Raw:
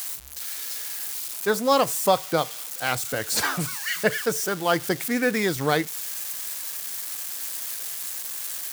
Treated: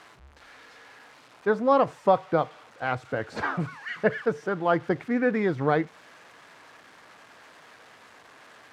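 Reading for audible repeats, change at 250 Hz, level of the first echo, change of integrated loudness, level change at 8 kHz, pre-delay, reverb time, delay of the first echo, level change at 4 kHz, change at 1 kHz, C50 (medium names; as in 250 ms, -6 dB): no echo, 0.0 dB, no echo, -1.0 dB, under -25 dB, no reverb, no reverb, no echo, -16.0 dB, -1.0 dB, no reverb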